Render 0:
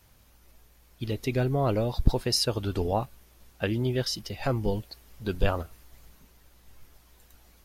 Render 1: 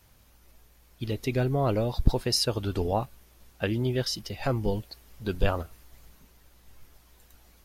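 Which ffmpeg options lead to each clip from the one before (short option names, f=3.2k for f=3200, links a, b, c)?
-af anull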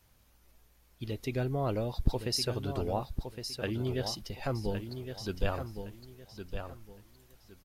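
-af "aecho=1:1:1113|2226|3339:0.398|0.104|0.0269,volume=-6dB"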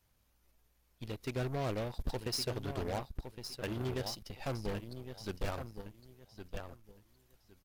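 -af "volume=24.5dB,asoftclip=hard,volume=-24.5dB,aeval=exprs='0.0631*(cos(1*acos(clip(val(0)/0.0631,-1,1)))-cos(1*PI/2))+0.01*(cos(6*acos(clip(val(0)/0.0631,-1,1)))-cos(6*PI/2))+0.00316*(cos(7*acos(clip(val(0)/0.0631,-1,1)))-cos(7*PI/2))+0.0112*(cos(8*acos(clip(val(0)/0.0631,-1,1)))-cos(8*PI/2))':c=same,volume=-4.5dB"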